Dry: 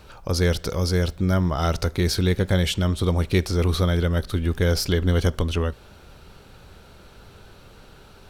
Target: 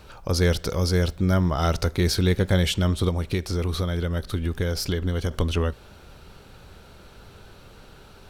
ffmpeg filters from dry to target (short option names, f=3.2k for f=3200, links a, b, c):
-filter_complex "[0:a]asettb=1/sr,asplit=3[a][b][c];[a]atrim=end=3.084[d];[b]atrim=start=3.08:end=5.31,asetpts=PTS-STARTPTS,afade=t=in:d=0.004:c=qsin,afade=t=out:st=2.226:d=0.004:c=qsin,acompressor=threshold=-22dB:ratio=4[e];[c]atrim=start=5.306[f];[d][e]acrossfade=d=0.004:c1=hsin:c2=qsin[g];[g][f]acrossfade=d=0.004:c1=qsin:c2=hsin"